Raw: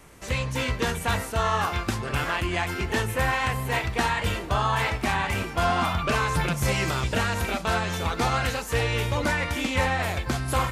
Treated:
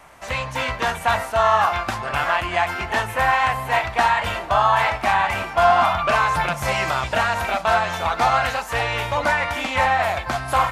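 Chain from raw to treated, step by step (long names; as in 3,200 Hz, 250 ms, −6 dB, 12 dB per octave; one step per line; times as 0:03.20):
drawn EQ curve 450 Hz 0 dB, 660 Hz +15 dB, 8,000 Hz +2 dB
0:05.20–0:06.90: floating-point word with a short mantissa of 8 bits
level −4 dB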